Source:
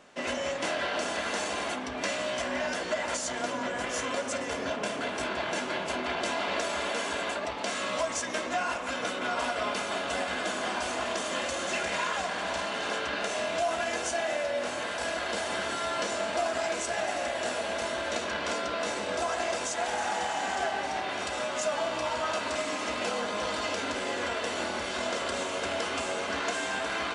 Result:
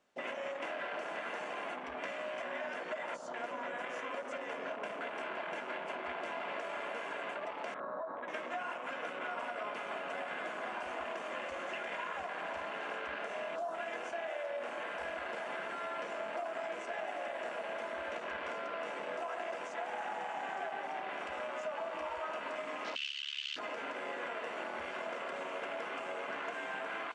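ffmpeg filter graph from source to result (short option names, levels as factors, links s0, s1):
-filter_complex "[0:a]asettb=1/sr,asplit=3[s0][s1][s2];[s0]atrim=end=7.744[s3];[s1]atrim=start=7.74:end=8.28,asetpts=PTS-STARTPTS,afade=t=in:d=0.004:c=qsin,afade=t=out:st=0.536:d=0.004:c=qsin,lowpass=f=1500:w=0.5412,lowpass=f=1500:w=1.3066,acompressor=threshold=0.0316:ratio=6:attack=3.2:release=140:knee=1:detection=peak[s4];[s2]atrim=start=8.276[s5];[s3][s4]acrossfade=d=0.004:c1=hsin:c2=qsin[s6];[s6][s5]acrossfade=d=0.004:c1=qsin:c2=hsin,asettb=1/sr,asplit=3[s7][s8][s9];[s7]atrim=end=22.954[s10];[s8]atrim=start=22.95:end=23.56,asetpts=PTS-STARTPTS,afade=t=in:d=0.004:c=qsin,afade=t=out:st=0.606:d=0.004:c=qsin,highpass=f=2900:t=q:w=9.5,tremolo=f=71:d=0.824[s11];[s9]atrim=start=23.556[s12];[s10][s11]acrossfade=d=0.004:c1=hsin:c2=qsin[s13];[s13][s12]acrossfade=d=0.004:c1=qsin:c2=hsin,bandreject=f=50:t=h:w=6,bandreject=f=100:t=h:w=6,bandreject=f=150:t=h:w=6,bandreject=f=200:t=h:w=6,bandreject=f=250:t=h:w=6,bandreject=f=300:t=h:w=6,acrossover=split=440|7100[s14][s15][s16];[s14]acompressor=threshold=0.00316:ratio=4[s17];[s15]acompressor=threshold=0.02:ratio=4[s18];[s16]acompressor=threshold=0.00251:ratio=4[s19];[s17][s18][s19]amix=inputs=3:normalize=0,afwtdn=0.0112,volume=0.708"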